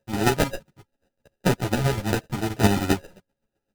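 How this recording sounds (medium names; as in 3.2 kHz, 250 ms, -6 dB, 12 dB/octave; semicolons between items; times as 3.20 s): a buzz of ramps at a fixed pitch in blocks of 16 samples; chopped level 7.6 Hz, depth 65%, duty 20%; aliases and images of a low sample rate 1.1 kHz, jitter 0%; a shimmering, thickened sound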